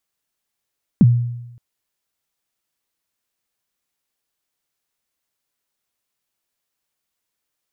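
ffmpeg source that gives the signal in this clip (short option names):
-f lavfi -i "aevalsrc='0.562*pow(10,-3*t/0.93)*sin(2*PI*(250*0.036/log(120/250)*(exp(log(120/250)*min(t,0.036)/0.036)-1)+120*max(t-0.036,0)))':d=0.57:s=44100"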